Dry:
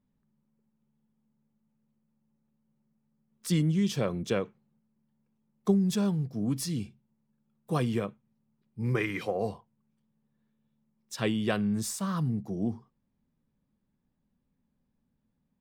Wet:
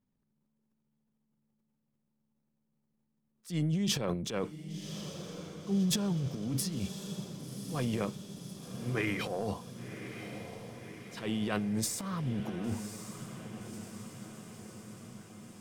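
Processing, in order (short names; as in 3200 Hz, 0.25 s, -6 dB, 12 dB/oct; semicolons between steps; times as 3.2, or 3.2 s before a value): transient shaper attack -10 dB, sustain +11 dB; diffused feedback echo 1.094 s, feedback 65%, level -10 dB; gain -4.5 dB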